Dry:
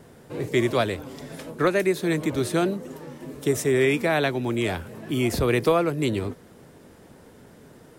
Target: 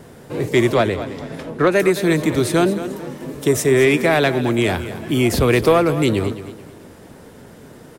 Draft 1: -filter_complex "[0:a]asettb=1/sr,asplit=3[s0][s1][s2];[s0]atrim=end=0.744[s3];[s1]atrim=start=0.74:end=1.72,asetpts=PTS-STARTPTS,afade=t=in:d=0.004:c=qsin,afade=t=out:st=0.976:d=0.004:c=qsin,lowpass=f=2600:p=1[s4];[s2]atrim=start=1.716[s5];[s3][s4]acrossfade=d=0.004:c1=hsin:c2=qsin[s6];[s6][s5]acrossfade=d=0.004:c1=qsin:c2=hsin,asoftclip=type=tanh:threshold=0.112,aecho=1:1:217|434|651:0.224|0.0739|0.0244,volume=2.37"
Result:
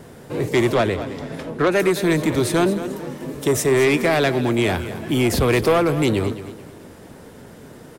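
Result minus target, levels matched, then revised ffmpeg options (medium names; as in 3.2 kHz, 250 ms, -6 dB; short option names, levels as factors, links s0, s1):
saturation: distortion +9 dB
-filter_complex "[0:a]asettb=1/sr,asplit=3[s0][s1][s2];[s0]atrim=end=0.744[s3];[s1]atrim=start=0.74:end=1.72,asetpts=PTS-STARTPTS,afade=t=in:d=0.004:c=qsin,afade=t=out:st=0.976:d=0.004:c=qsin,lowpass=f=2600:p=1[s4];[s2]atrim=start=1.716[s5];[s3][s4]acrossfade=d=0.004:c1=hsin:c2=qsin[s6];[s6][s5]acrossfade=d=0.004:c1=qsin:c2=hsin,asoftclip=type=tanh:threshold=0.251,aecho=1:1:217|434|651:0.224|0.0739|0.0244,volume=2.37"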